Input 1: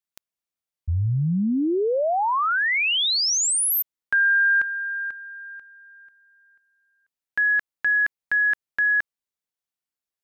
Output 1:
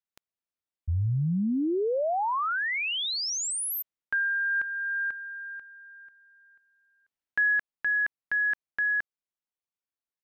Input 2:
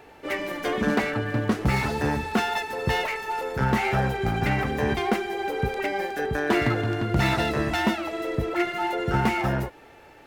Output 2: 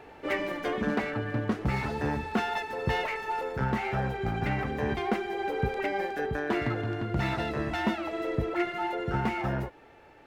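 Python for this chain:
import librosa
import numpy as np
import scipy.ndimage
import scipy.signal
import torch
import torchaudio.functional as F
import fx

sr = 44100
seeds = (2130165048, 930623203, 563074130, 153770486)

y = fx.high_shelf(x, sr, hz=5000.0, db=-10.5)
y = fx.rider(y, sr, range_db=5, speed_s=0.5)
y = F.gain(torch.from_numpy(y), -4.5).numpy()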